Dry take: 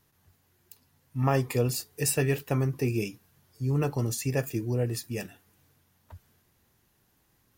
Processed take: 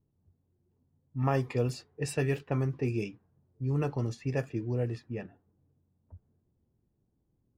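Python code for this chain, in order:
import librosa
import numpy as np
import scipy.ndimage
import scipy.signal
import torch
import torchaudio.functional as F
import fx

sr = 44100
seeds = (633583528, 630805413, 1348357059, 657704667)

y = fx.env_lowpass(x, sr, base_hz=380.0, full_db=-21.5)
y = fx.high_shelf(y, sr, hz=6000.0, db=-11.0)
y = y * 10.0 ** (-3.0 / 20.0)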